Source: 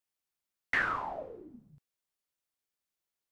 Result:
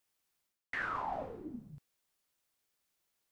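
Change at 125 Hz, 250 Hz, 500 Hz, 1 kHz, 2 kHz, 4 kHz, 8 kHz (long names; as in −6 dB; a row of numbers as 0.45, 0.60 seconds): +1.0 dB, +2.5 dB, −1.5 dB, −2.0 dB, −8.0 dB, −8.0 dB, can't be measured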